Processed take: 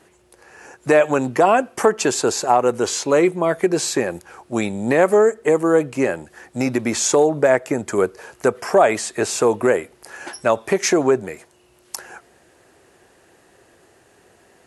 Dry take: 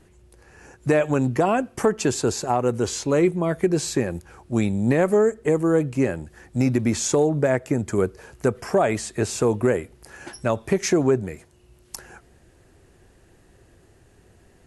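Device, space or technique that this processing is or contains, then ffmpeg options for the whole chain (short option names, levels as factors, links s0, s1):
filter by subtraction: -filter_complex "[0:a]asplit=2[s0][s1];[s1]lowpass=730,volume=-1[s2];[s0][s2]amix=inputs=2:normalize=0,volume=1.88"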